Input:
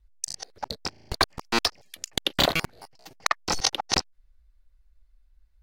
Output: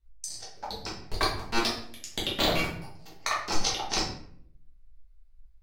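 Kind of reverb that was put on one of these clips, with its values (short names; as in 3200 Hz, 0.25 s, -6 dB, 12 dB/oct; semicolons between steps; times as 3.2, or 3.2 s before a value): shoebox room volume 95 m³, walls mixed, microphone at 1.6 m; gain -9.5 dB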